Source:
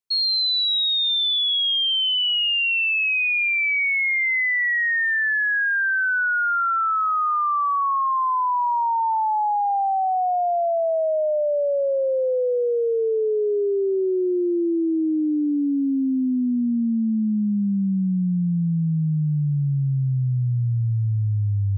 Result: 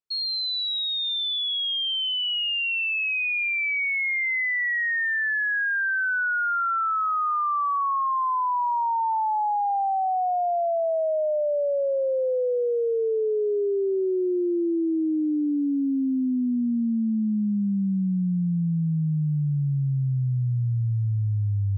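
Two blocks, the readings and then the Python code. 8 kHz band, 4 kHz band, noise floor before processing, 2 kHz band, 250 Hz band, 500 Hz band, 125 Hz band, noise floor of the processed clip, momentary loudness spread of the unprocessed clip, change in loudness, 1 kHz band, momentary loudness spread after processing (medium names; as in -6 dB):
no reading, -5.5 dB, -21 dBFS, -4.0 dB, -2.5 dB, -2.5 dB, -2.5 dB, -27 dBFS, 4 LU, -3.5 dB, -3.0 dB, 2 LU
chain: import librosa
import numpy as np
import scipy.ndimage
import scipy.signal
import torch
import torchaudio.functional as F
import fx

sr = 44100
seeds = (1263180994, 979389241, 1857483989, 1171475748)

y = fx.lowpass(x, sr, hz=3300.0, slope=6)
y = y * 10.0 ** (-2.5 / 20.0)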